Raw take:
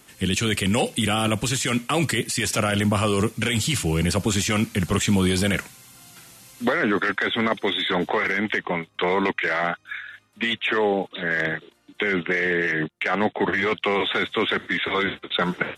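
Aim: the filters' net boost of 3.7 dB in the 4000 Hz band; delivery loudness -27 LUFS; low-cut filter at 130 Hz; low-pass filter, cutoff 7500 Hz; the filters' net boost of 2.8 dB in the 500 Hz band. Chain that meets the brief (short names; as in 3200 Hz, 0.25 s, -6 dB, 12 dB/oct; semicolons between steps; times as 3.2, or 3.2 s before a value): HPF 130 Hz; LPF 7500 Hz; bell 500 Hz +3.5 dB; bell 4000 Hz +5 dB; gain -5.5 dB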